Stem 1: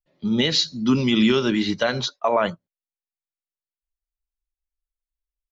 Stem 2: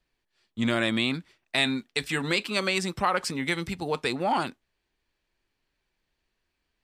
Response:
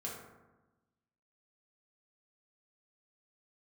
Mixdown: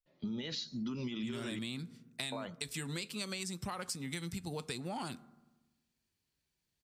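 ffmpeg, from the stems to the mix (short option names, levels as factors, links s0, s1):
-filter_complex "[0:a]alimiter=limit=0.15:level=0:latency=1:release=162,volume=0.531,asplit=3[s0][s1][s2];[s0]atrim=end=1.59,asetpts=PTS-STARTPTS,afade=t=out:st=1.586:d=0.004:c=hsin[s3];[s1]atrim=start=1.59:end=2.32,asetpts=PTS-STARTPTS,volume=0[s4];[s2]atrim=start=2.32,asetpts=PTS-STARTPTS,afade=t=in:d=0.004:c=hsin[s5];[s3][s4][s5]concat=n=3:v=0:a=1,asplit=2[s6][s7];[s7]volume=0.0708[s8];[1:a]highpass=78,bass=f=250:g=12,treble=f=4000:g=15,adelay=650,volume=0.251,asplit=2[s9][s10];[s10]volume=0.119[s11];[2:a]atrim=start_sample=2205[s12];[s8][s11]amix=inputs=2:normalize=0[s13];[s13][s12]afir=irnorm=-1:irlink=0[s14];[s6][s9][s14]amix=inputs=3:normalize=0,acompressor=threshold=0.0158:ratio=10"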